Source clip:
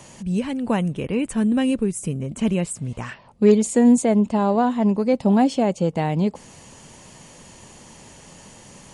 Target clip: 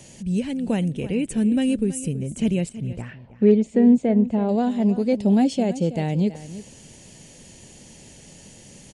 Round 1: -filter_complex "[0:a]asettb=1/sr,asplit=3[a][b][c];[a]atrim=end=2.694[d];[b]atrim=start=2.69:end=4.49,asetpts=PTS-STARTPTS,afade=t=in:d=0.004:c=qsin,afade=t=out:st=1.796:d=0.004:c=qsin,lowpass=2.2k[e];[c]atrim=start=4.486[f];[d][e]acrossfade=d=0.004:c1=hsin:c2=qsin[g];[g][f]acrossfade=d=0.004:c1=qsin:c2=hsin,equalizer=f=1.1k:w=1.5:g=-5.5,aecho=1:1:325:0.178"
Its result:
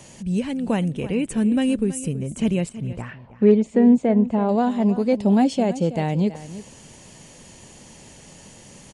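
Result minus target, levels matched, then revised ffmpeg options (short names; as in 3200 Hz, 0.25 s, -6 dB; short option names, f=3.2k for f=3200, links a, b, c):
1000 Hz band +4.0 dB
-filter_complex "[0:a]asettb=1/sr,asplit=3[a][b][c];[a]atrim=end=2.694[d];[b]atrim=start=2.69:end=4.49,asetpts=PTS-STARTPTS,afade=t=in:d=0.004:c=qsin,afade=t=out:st=1.796:d=0.004:c=qsin,lowpass=2.2k[e];[c]atrim=start=4.486[f];[d][e]acrossfade=d=0.004:c1=hsin:c2=qsin[g];[g][f]acrossfade=d=0.004:c1=qsin:c2=hsin,equalizer=f=1.1k:w=1.5:g=-15,aecho=1:1:325:0.178"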